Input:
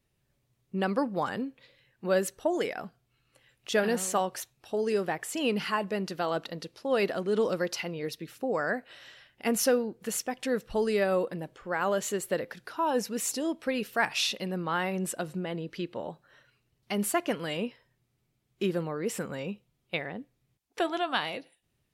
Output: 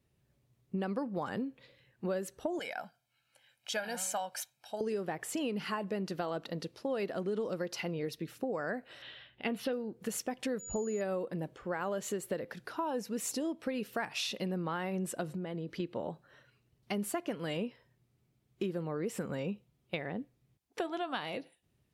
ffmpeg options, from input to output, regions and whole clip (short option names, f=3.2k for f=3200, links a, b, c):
-filter_complex "[0:a]asettb=1/sr,asplit=3[a][b][c];[a]atrim=end=2.594[d];[b]atrim=start=2.59:end=4.81,asetpts=PTS-STARTPTS,afade=t=in:d=0.004:c=qsin,afade=t=out:st=2.216:d=0.004:c=qsin,highpass=f=1.1k:p=1,aecho=1:1:1.3:0.74,atrim=end_sample=97902[e];[c]atrim=start=4.806[f];[d][e]acrossfade=d=0.004:c1=hsin:c2=qsin[g];[g][f]acrossfade=d=0.004:c1=qsin:c2=hsin,asettb=1/sr,asplit=3[h][i][j];[h]atrim=end=9.024[k];[i]atrim=start=9.02:end=9.73,asetpts=PTS-STARTPTS,afade=t=in:d=0.004:c=qsin,afade=t=out:st=0.706:d=0.004:c=qsin,highshelf=f=4.8k:t=q:w=3:g=-11,asplit=2[l][m];[m]adelay=16,volume=-13dB[n];[l][n]amix=inputs=2:normalize=0,atrim=end_sample=31311[o];[j]atrim=start=9.726[p];[k][o]acrossfade=d=0.004:c1=hsin:c2=qsin[q];[q][p]acrossfade=d=0.004:c1=qsin:c2=hsin,asettb=1/sr,asplit=3[r][s][t];[r]atrim=end=10.594[u];[s]atrim=start=10.59:end=11.01,asetpts=PTS-STARTPTS,afade=t=in:d=0.004:c=qsin,afade=t=out:st=0.416:d=0.004:c=qsin,equalizer=f=5.7k:t=o:w=2.1:g=-15,aeval=exprs='val(0)+0.0158*sin(2*PI*6900*n/s)':c=same[v];[t]atrim=start=11.006[w];[u][v]acrossfade=d=0.004:c1=hsin:c2=qsin[x];[x][w]acrossfade=d=0.004:c1=qsin:c2=hsin,asettb=1/sr,asplit=3[y][z][aa];[y]atrim=end=15.314[ab];[z]atrim=start=15.31:end=15.8,asetpts=PTS-STARTPTS,afade=t=in:d=0.004:c=qsin,afade=t=out:st=0.486:d=0.004:c=qsin,acompressor=threshold=-37dB:ratio=4:attack=3.2:release=140:knee=1:detection=peak,bandreject=f=2.7k:w=17[ac];[aa]atrim=start=15.796[ad];[ab][ac]acrossfade=d=0.004:c1=hsin:c2=qsin[ae];[ae][ad]acrossfade=d=0.004:c1=qsin:c2=hsin,highpass=45,tiltshelf=f=740:g=3,acompressor=threshold=-32dB:ratio=6"